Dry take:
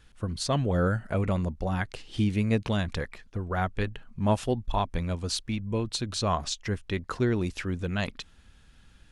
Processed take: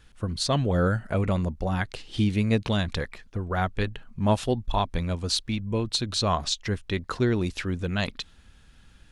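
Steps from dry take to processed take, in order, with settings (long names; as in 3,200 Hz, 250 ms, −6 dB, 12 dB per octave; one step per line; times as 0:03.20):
dynamic equaliser 3,900 Hz, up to +5 dB, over −51 dBFS, Q 2.5
level +2 dB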